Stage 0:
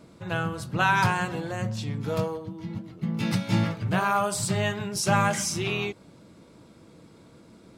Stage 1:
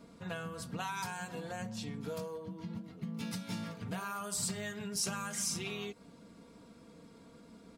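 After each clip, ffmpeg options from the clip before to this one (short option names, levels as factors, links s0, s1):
-filter_complex "[0:a]aecho=1:1:4.3:0.59,acrossover=split=5200[s0][s1];[s0]acompressor=threshold=0.0251:ratio=6[s2];[s2][s1]amix=inputs=2:normalize=0,volume=0.531"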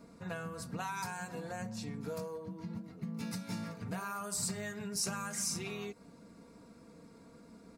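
-af "equalizer=f=3200:t=o:w=0.36:g=-10.5"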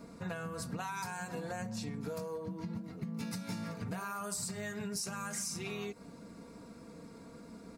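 -af "acompressor=threshold=0.00891:ratio=6,volume=1.78"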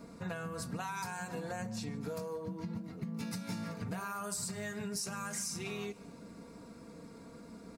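-af "aecho=1:1:147|294|441|588:0.0708|0.0396|0.0222|0.0124"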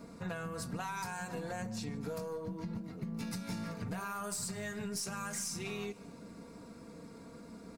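-af "aeval=exprs='(tanh(28.2*val(0)+0.25)-tanh(0.25))/28.2':c=same,volume=1.12"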